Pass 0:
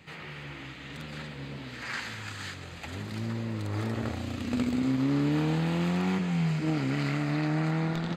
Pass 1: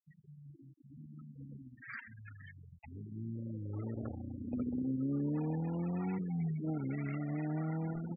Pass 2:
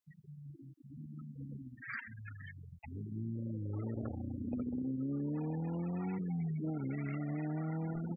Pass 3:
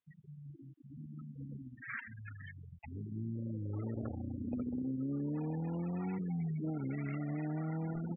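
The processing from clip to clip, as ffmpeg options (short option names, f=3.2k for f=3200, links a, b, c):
-af "afftfilt=real='re*gte(hypot(re,im),0.0398)':imag='im*gte(hypot(re,im),0.0398)':win_size=1024:overlap=0.75,volume=-8dB"
-af "acompressor=threshold=-38dB:ratio=5,volume=3.5dB"
-af "aresample=8000,aresample=44100"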